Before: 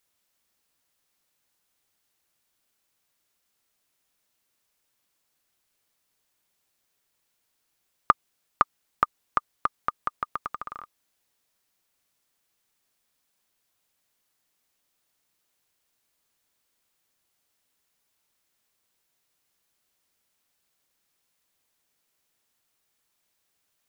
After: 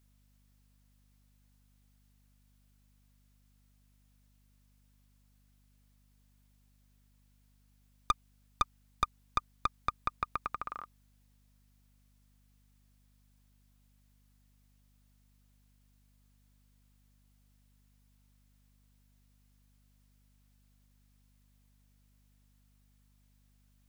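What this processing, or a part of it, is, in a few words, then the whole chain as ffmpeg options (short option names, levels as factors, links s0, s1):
valve amplifier with mains hum: -af "aeval=exprs='(tanh(8.91*val(0)+0.5)-tanh(0.5))/8.91':c=same,aeval=exprs='val(0)+0.000501*(sin(2*PI*50*n/s)+sin(2*PI*2*50*n/s)/2+sin(2*PI*3*50*n/s)/3+sin(2*PI*4*50*n/s)/4+sin(2*PI*5*50*n/s)/5)':c=same"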